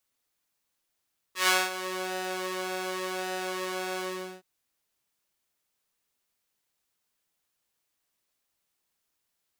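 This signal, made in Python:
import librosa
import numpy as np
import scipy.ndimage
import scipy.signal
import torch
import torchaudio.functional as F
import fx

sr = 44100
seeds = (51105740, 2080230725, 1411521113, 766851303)

y = fx.sub_patch_pwm(sr, seeds[0], note=66, wave2='saw', interval_st=7, detune_cents=23, level2_db=-5.5, sub_db=-2, noise_db=-30.0, kind='highpass', cutoff_hz=190.0, q=0.7, env_oct=3.0, env_decay_s=0.58, env_sustain_pct=45, attack_ms=128.0, decay_s=0.22, sustain_db=-16.0, release_s=0.43, note_s=2.64, lfo_hz=0.89, width_pct=48, width_swing_pct=15)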